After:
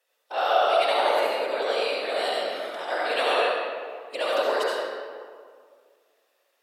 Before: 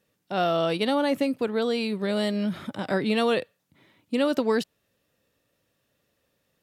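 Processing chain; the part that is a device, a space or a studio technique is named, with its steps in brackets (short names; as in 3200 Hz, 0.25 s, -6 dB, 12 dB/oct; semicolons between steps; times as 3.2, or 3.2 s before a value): whispering ghost (whisperiser; HPF 530 Hz 24 dB/oct; reverb RT60 1.9 s, pre-delay 61 ms, DRR -5 dB); gain -1 dB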